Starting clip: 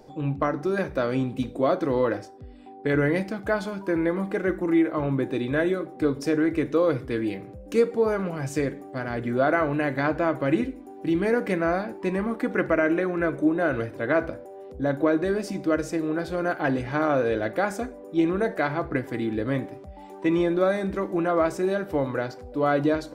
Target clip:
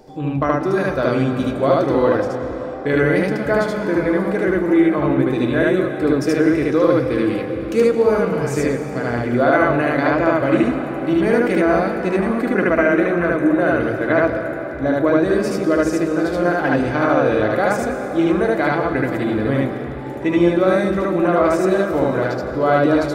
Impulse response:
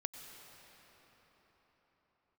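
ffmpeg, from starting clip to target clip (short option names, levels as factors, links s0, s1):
-filter_complex "[0:a]asplit=2[s0][s1];[1:a]atrim=start_sample=2205,adelay=75[s2];[s1][s2]afir=irnorm=-1:irlink=0,volume=1.41[s3];[s0][s3]amix=inputs=2:normalize=0,volume=1.58"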